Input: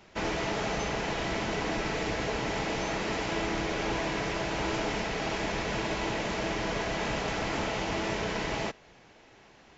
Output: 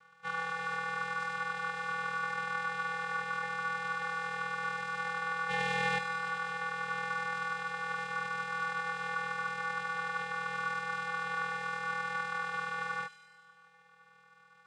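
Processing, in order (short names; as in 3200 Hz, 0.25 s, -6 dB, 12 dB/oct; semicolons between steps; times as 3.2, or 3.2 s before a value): spectral gain 3.66–3.99, 460–3400 Hz +10 dB; granular stretch 1.5×, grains 49 ms; vocoder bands 4, square 160 Hz; ring modulator 1300 Hz; thin delay 98 ms, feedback 65%, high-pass 3600 Hz, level -8 dB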